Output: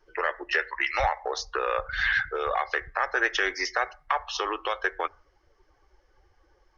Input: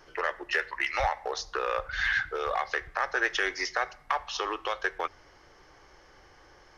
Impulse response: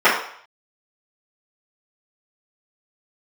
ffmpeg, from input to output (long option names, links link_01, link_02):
-af "afftdn=noise_reduction=17:noise_floor=-46,volume=2.5dB"